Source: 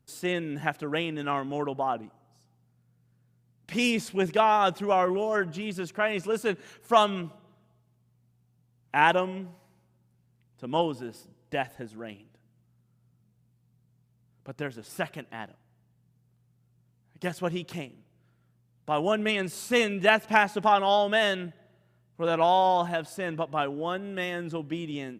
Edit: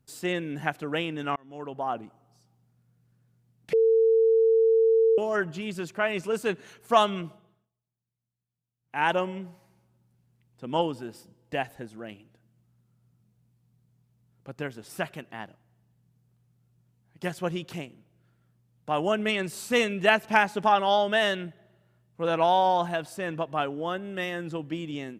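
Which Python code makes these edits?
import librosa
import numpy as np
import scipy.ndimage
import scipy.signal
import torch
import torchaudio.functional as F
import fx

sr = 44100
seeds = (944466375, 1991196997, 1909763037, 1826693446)

y = fx.edit(x, sr, fx.fade_in_span(start_s=1.36, length_s=0.63),
    fx.bleep(start_s=3.73, length_s=1.45, hz=450.0, db=-17.0),
    fx.fade_down_up(start_s=7.27, length_s=1.95, db=-21.5, fade_s=0.43), tone=tone)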